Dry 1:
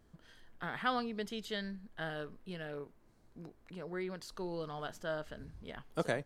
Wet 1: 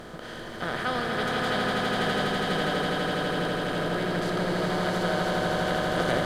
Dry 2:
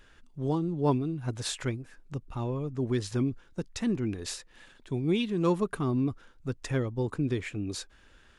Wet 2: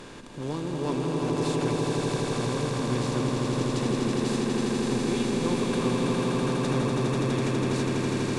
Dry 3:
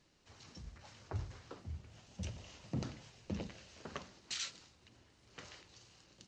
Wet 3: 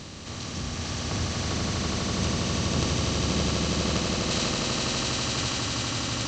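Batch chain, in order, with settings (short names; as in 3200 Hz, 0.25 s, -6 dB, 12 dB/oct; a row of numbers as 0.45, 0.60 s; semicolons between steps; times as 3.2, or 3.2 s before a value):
per-bin compression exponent 0.4; swelling echo 82 ms, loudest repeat 8, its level -4.5 dB; match loudness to -27 LUFS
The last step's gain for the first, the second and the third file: +0.5, -8.5, +6.0 dB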